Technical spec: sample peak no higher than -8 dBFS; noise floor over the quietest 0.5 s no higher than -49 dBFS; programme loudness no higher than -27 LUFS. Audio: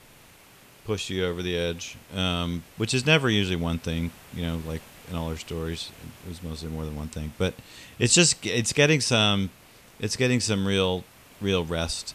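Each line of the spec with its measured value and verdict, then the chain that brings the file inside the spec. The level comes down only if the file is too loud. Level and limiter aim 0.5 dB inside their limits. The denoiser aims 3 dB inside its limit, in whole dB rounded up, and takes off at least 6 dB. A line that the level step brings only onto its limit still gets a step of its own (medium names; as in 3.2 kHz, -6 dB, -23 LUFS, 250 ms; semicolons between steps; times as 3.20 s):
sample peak -5.5 dBFS: fail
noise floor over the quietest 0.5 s -53 dBFS: pass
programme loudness -25.5 LUFS: fail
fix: trim -2 dB; peak limiter -8.5 dBFS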